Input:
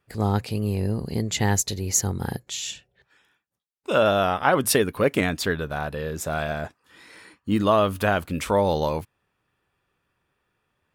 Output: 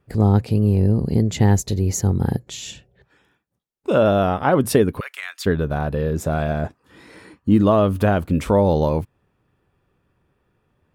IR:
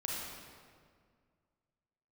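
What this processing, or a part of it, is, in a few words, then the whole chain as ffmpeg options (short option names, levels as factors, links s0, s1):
parallel compression: -filter_complex "[0:a]asplit=2[s0][s1];[s1]acompressor=threshold=0.0316:ratio=6,volume=0.841[s2];[s0][s2]amix=inputs=2:normalize=0,asplit=3[s3][s4][s5];[s3]afade=t=out:st=4.99:d=0.02[s6];[s4]highpass=f=1300:w=0.5412,highpass=f=1300:w=1.3066,afade=t=in:st=4.99:d=0.02,afade=t=out:st=5.45:d=0.02[s7];[s5]afade=t=in:st=5.45:d=0.02[s8];[s6][s7][s8]amix=inputs=3:normalize=0,tiltshelf=f=780:g=7"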